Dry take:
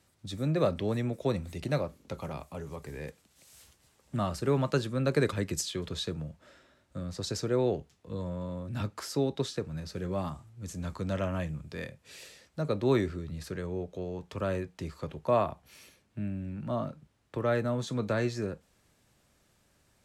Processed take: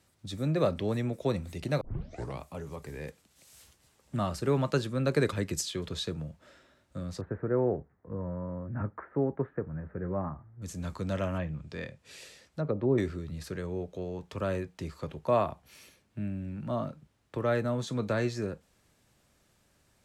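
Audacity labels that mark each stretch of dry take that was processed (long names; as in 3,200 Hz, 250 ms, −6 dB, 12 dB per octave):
1.810000	1.810000	tape start 0.59 s
7.210000	10.620000	Butterworth low-pass 1,900 Hz 48 dB per octave
11.370000	12.980000	treble cut that deepens with the level closes to 550 Hz, closed at −24.5 dBFS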